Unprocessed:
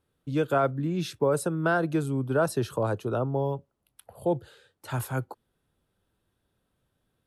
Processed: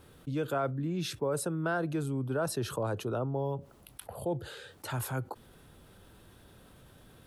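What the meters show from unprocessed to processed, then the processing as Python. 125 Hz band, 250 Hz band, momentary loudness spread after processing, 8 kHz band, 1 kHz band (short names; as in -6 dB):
-4.5 dB, -5.5 dB, 13 LU, 0.0 dB, -6.5 dB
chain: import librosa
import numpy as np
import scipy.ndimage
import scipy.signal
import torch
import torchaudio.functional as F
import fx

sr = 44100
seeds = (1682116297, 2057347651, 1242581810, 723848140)

y = fx.env_flatten(x, sr, amount_pct=50)
y = y * librosa.db_to_amplitude(-8.0)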